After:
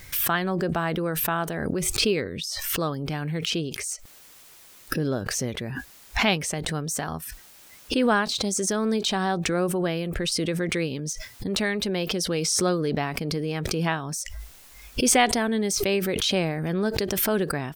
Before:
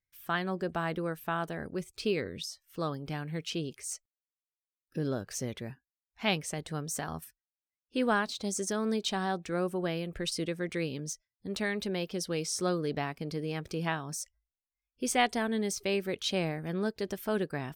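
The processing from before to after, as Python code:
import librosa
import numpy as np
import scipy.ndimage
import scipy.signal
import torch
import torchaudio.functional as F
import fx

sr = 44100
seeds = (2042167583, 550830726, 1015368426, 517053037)

y = fx.pre_swell(x, sr, db_per_s=22.0)
y = y * 10.0 ** (6.0 / 20.0)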